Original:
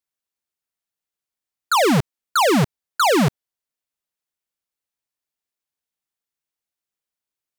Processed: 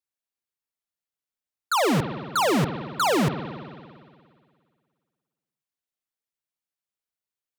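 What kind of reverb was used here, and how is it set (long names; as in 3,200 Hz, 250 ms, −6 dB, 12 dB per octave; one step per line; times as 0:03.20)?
spring reverb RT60 2 s, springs 57 ms, chirp 25 ms, DRR 8 dB
level −5.5 dB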